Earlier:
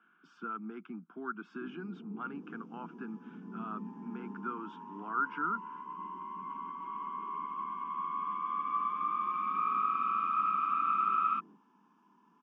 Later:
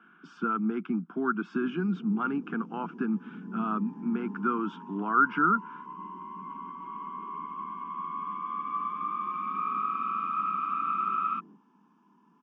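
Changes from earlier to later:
speech +9.0 dB; master: add low shelf 260 Hz +9 dB

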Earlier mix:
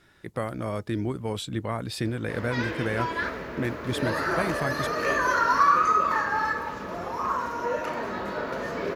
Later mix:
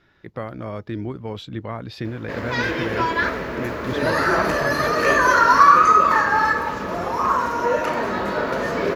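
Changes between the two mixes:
speech: add running mean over 5 samples; background +8.0 dB

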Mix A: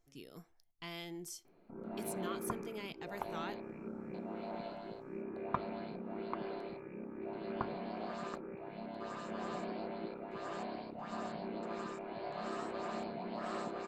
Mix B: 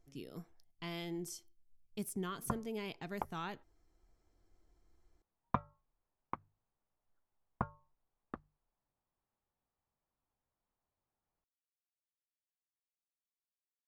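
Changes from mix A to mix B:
first sound: muted; master: add low shelf 440 Hz +7 dB

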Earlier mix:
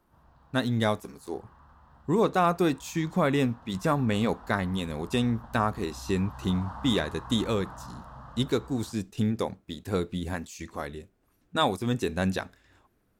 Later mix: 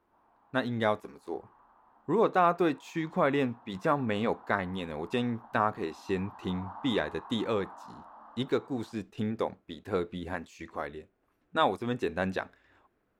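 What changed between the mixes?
background: add rippled Chebyshev high-pass 210 Hz, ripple 9 dB; master: add tone controls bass -9 dB, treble -15 dB

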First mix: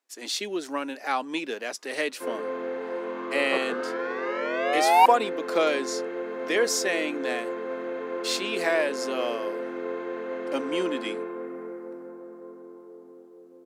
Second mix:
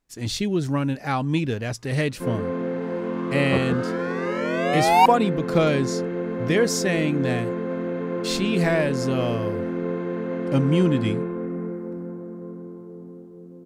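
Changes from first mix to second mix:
second sound: remove air absorption 130 m; master: remove Bessel high-pass 470 Hz, order 8

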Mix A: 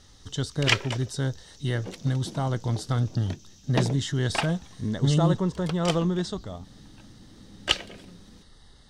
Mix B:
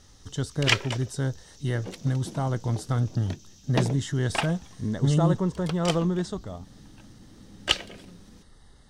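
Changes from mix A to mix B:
speech: add bell 4000 Hz -7 dB 1.2 oct; master: add high shelf 10000 Hz +3.5 dB

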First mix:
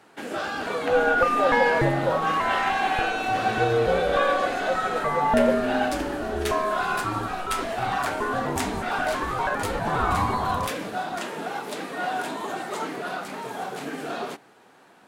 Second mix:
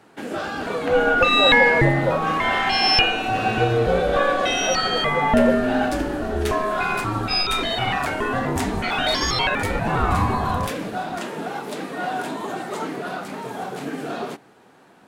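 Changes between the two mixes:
second sound: remove LPF 1500 Hz 24 dB/oct; master: add low shelf 370 Hz +7.5 dB

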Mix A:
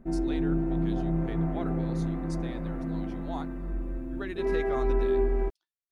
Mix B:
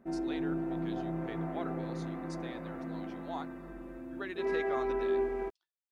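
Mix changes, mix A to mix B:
speech: add air absorption 58 m; master: add HPF 490 Hz 6 dB/oct

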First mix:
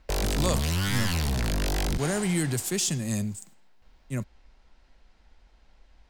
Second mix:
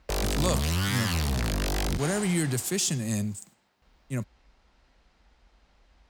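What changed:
background: remove notch 1200 Hz, Q 13; master: add HPF 42 Hz

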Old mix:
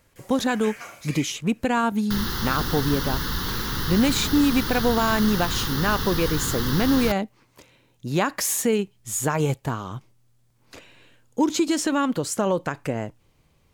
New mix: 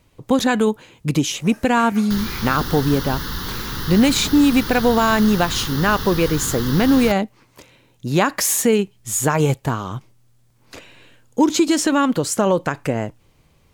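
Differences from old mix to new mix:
speech +5.5 dB; first sound: entry +1.15 s

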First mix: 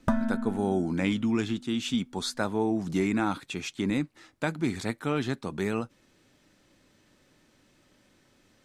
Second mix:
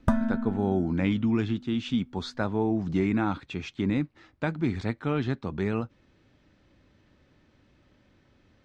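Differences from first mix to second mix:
speech: add air absorption 170 m; master: add bell 64 Hz +11.5 dB 1.6 oct

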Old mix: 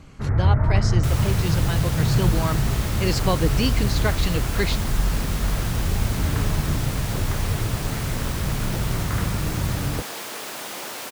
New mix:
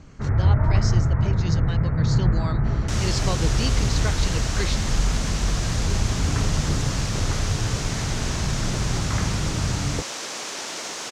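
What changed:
speech -6.0 dB; second sound: entry +1.85 s; master: add synth low-pass 6400 Hz, resonance Q 2.3

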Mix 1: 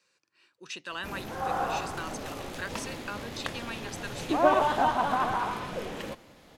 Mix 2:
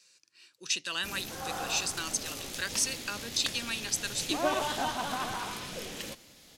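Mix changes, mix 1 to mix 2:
background -5.0 dB; master: add EQ curve 260 Hz 0 dB, 1000 Hz -4 dB, 5600 Hz +14 dB

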